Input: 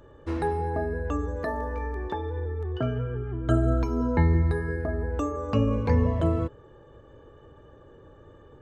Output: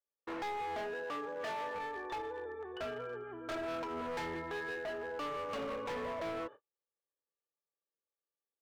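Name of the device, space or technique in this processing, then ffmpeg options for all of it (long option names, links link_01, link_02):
walkie-talkie: -filter_complex "[0:a]highpass=590,lowpass=2900,asoftclip=type=hard:threshold=-36.5dB,agate=range=-46dB:threshold=-50dB:ratio=16:detection=peak,asettb=1/sr,asplit=3[link_01][link_02][link_03];[link_01]atrim=end=0.944[link_04];[link_02]atrim=start=0.94:end=1.75,asetpts=PTS-STARTPTS,afade=type=in:duration=0.004:curve=qsin,afade=type=out:start_time=0.806:duration=0.004:curve=qsin,highpass=frequency=110:width=0.5412,highpass=frequency=110:width=1.3066[link_05];[link_03]atrim=start=1.746[link_06];[link_04][link_05]acrossfade=duration=0.004:curve1=hsin:curve2=qsin[link_07];[link_07][link_06]acrossfade=duration=0.004:curve1=qsin:curve2=hsin"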